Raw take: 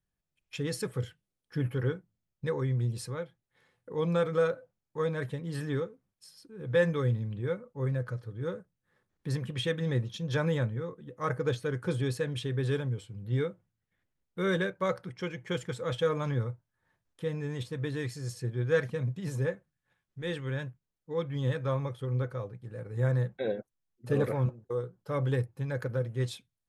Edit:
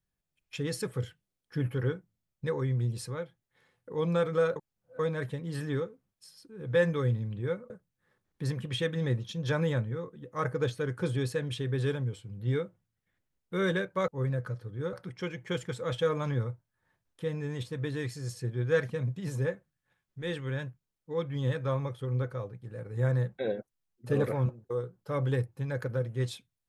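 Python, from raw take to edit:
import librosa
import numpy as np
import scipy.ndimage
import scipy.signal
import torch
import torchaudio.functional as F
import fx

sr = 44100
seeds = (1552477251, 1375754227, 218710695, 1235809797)

y = fx.edit(x, sr, fx.reverse_span(start_s=4.56, length_s=0.43),
    fx.move(start_s=7.7, length_s=0.85, to_s=14.93), tone=tone)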